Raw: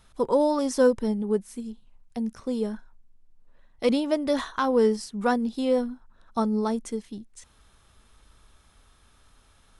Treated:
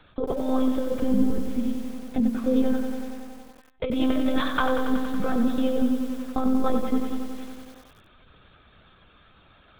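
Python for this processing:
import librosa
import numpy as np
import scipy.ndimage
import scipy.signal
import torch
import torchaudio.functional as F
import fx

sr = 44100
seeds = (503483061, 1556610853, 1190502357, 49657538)

y = fx.notch_comb(x, sr, f0_hz=990.0)
y = fx.lpc_monotone(y, sr, seeds[0], pitch_hz=260.0, order=16)
y = fx.over_compress(y, sr, threshold_db=-28.0, ratio=-1.0)
y = fx.echo_crushed(y, sr, ms=93, feedback_pct=80, bits=8, wet_db=-7.5)
y = y * librosa.db_to_amplitude(4.5)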